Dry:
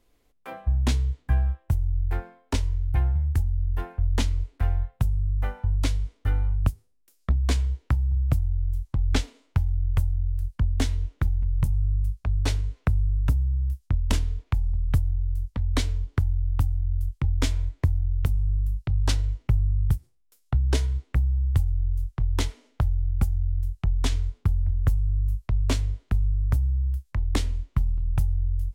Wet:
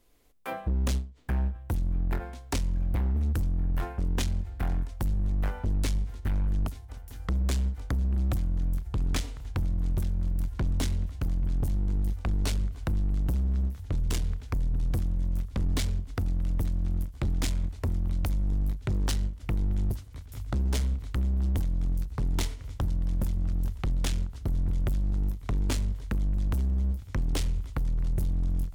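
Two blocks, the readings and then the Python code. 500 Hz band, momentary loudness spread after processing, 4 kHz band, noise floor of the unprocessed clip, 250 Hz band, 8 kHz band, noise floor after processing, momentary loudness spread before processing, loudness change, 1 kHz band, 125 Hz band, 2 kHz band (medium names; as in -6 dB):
-1.0 dB, 4 LU, -3.0 dB, -65 dBFS, +1.0 dB, -0.5 dB, -44 dBFS, 4 LU, -4.0 dB, -2.5 dB, -4.5 dB, -3.0 dB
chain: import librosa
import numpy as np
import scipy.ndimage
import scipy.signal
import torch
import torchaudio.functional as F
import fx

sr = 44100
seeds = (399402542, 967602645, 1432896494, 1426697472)

y = fx.recorder_agc(x, sr, target_db=-13.0, rise_db_per_s=6.7, max_gain_db=30)
y = fx.high_shelf(y, sr, hz=7100.0, db=6.5)
y = fx.echo_swing(y, sr, ms=1464, ratio=1.5, feedback_pct=79, wet_db=-23.0)
y = np.clip(y, -10.0 ** (-24.0 / 20.0), 10.0 ** (-24.0 / 20.0))
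y = fx.end_taper(y, sr, db_per_s=160.0)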